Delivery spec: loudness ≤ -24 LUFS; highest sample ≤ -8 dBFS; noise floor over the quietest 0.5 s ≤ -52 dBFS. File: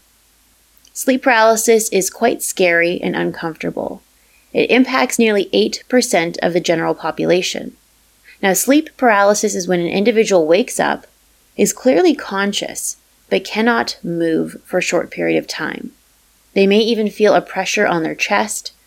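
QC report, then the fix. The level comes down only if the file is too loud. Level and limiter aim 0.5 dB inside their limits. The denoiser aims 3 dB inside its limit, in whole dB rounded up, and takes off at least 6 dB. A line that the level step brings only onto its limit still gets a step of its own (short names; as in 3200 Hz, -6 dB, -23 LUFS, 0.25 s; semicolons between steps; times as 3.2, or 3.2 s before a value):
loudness -16.0 LUFS: fail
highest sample -2.0 dBFS: fail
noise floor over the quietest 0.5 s -54 dBFS: OK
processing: gain -8.5 dB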